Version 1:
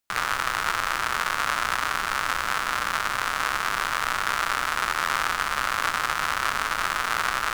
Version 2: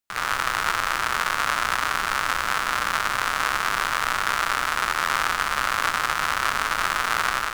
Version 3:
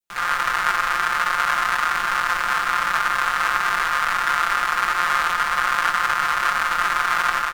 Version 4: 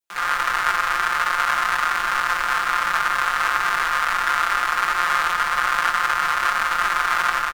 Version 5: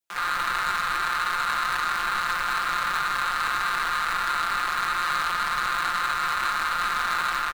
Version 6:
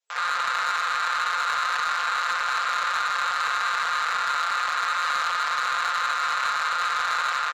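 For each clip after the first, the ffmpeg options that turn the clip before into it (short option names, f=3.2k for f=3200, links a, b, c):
-af "dynaudnorm=f=130:g=3:m=11.5dB,volume=-4.5dB"
-af "aecho=1:1:5.7:0.98,adynamicequalizer=threshold=0.0224:dfrequency=1400:dqfactor=0.79:tfrequency=1400:tqfactor=0.79:attack=5:release=100:ratio=0.375:range=3.5:mode=boostabove:tftype=bell,volume=-5.5dB"
-filter_complex "[0:a]acrossover=split=170[a][b];[a]adelay=40[c];[c][b]amix=inputs=2:normalize=0"
-af "asoftclip=type=tanh:threshold=-19.5dB"
-af "afftfilt=real='re*between(b*sr/4096,420,7700)':imag='im*between(b*sr/4096,420,7700)':win_size=4096:overlap=0.75,asoftclip=type=tanh:threshold=-21.5dB,volume=3dB"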